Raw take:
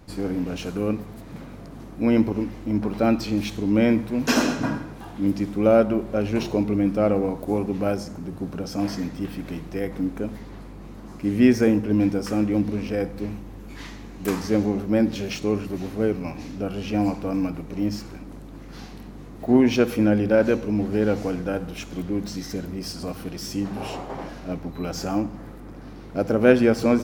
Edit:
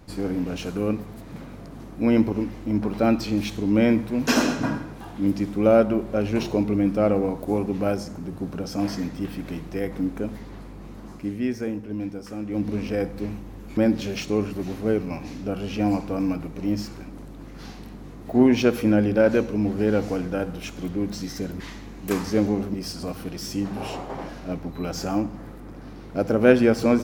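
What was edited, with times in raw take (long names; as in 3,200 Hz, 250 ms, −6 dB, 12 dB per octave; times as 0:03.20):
0:11.08–0:12.75: duck −10 dB, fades 0.31 s
0:13.77–0:14.91: move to 0:22.74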